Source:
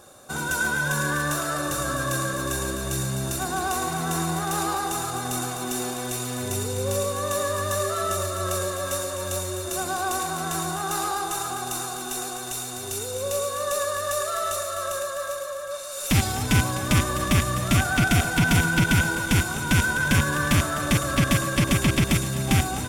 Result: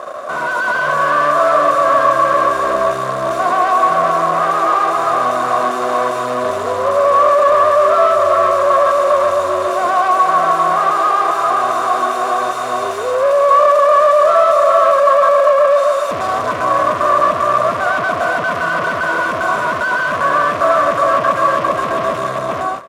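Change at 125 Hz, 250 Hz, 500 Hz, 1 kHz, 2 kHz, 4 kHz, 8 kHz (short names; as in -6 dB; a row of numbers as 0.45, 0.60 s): -10.5, -2.0, +16.5, +17.0, +7.0, -0.5, -8.0 dB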